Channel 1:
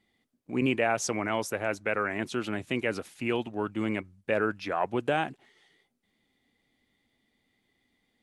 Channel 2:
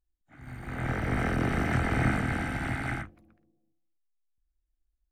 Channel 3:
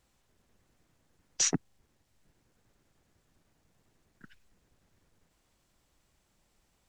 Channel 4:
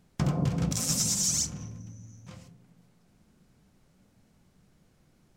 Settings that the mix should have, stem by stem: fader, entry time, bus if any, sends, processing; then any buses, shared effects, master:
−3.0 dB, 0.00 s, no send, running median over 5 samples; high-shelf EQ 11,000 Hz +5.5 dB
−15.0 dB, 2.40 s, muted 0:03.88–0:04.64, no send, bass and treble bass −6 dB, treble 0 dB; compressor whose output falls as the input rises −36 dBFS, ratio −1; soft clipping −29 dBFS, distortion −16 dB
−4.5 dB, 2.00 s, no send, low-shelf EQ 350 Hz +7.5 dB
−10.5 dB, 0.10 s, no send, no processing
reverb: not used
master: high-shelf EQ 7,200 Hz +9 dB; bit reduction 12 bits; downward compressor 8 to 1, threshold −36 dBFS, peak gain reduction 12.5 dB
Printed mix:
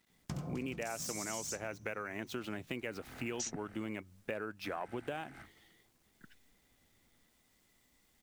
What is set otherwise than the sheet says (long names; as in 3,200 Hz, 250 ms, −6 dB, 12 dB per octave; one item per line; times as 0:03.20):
stem 1: missing high-shelf EQ 11,000 Hz +5.5 dB
stem 3: missing low-shelf EQ 350 Hz +7.5 dB